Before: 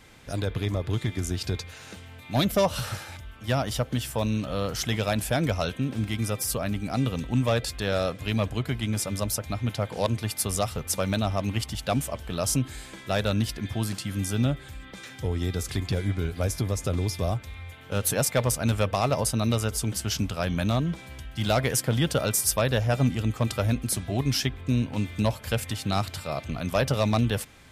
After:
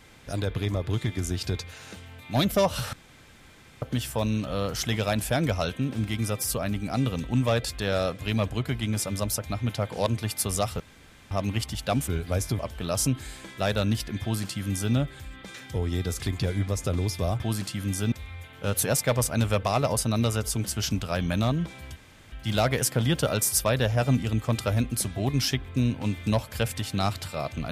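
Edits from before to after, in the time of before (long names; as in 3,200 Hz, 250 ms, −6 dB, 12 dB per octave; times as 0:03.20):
0:02.93–0:03.82: fill with room tone
0:10.80–0:11.31: fill with room tone
0:13.71–0:14.43: duplicate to 0:17.40
0:16.17–0:16.68: move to 0:12.08
0:21.24: splice in room tone 0.36 s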